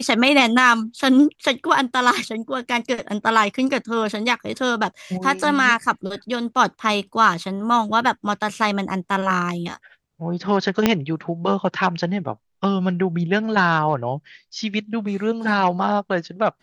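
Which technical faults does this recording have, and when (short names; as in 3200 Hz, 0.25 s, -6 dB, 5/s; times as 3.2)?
10.86 pop -1 dBFS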